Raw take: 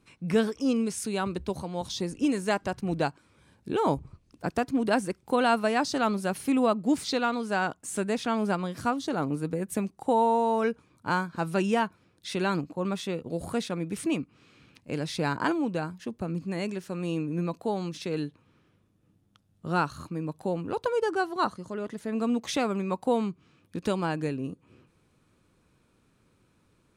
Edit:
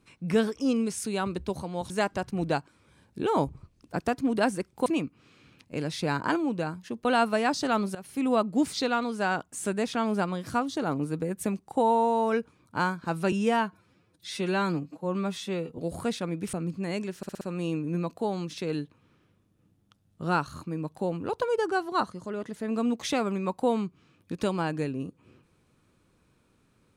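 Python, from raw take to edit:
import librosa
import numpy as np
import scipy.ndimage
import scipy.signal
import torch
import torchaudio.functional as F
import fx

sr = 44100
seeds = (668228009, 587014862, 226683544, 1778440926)

y = fx.edit(x, sr, fx.cut(start_s=1.9, length_s=0.5),
    fx.fade_in_from(start_s=6.26, length_s=0.42, floor_db=-18.0),
    fx.stretch_span(start_s=11.63, length_s=1.64, factor=1.5),
    fx.move(start_s=14.02, length_s=2.19, to_s=5.36),
    fx.stutter(start_s=16.85, slice_s=0.06, count=5), tone=tone)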